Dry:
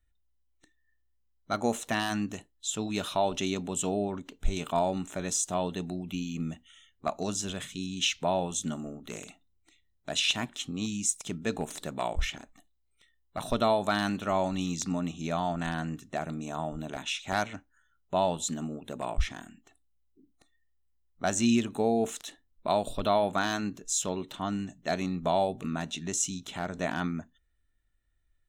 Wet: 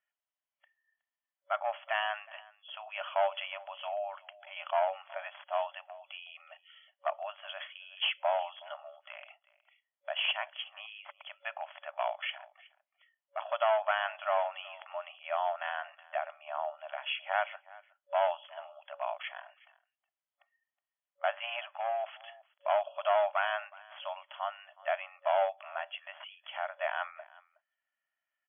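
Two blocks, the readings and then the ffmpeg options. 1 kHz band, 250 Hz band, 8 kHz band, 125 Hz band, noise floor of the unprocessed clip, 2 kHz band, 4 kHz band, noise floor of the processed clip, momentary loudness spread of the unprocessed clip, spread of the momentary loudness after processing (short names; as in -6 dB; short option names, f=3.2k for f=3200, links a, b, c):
-1.0 dB, under -40 dB, under -40 dB, under -40 dB, -72 dBFS, 0.0 dB, -4.5 dB, under -85 dBFS, 10 LU, 17 LU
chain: -af "aeval=exprs='clip(val(0),-1,0.0531)':c=same,afftfilt=real='re*between(b*sr/4096,560,3400)':imag='im*between(b*sr/4096,560,3400)':win_size=4096:overlap=0.75,aecho=1:1:368:0.0794"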